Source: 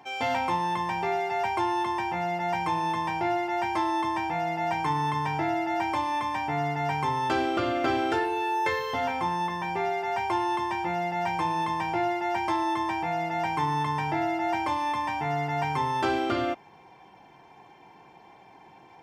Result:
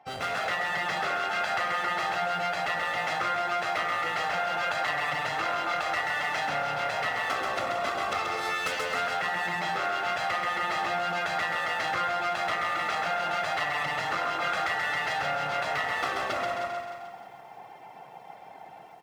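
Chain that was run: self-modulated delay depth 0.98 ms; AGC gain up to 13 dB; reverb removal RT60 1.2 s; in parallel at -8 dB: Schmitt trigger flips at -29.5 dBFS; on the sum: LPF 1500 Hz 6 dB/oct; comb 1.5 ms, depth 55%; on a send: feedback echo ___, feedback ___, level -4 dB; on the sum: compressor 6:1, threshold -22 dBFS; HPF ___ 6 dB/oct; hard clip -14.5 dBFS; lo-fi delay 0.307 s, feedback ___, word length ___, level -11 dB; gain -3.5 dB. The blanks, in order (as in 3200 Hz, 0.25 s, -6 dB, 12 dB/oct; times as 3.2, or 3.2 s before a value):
0.132 s, 40%, 470 Hz, 35%, 9-bit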